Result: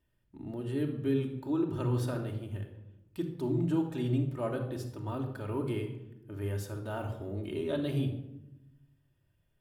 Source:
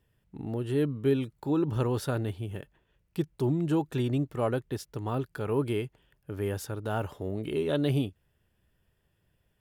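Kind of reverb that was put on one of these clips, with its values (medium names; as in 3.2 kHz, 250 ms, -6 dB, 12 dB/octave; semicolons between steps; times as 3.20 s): simulated room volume 3000 m³, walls furnished, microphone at 2.7 m; trim -7.5 dB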